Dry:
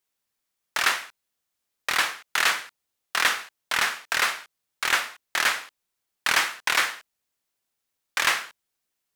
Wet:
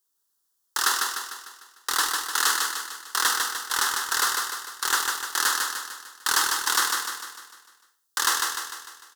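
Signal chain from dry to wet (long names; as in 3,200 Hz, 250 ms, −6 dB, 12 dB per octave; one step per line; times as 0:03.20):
high-shelf EQ 2,600 Hz +7 dB
phaser with its sweep stopped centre 630 Hz, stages 6
repeating echo 150 ms, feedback 51%, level −4 dB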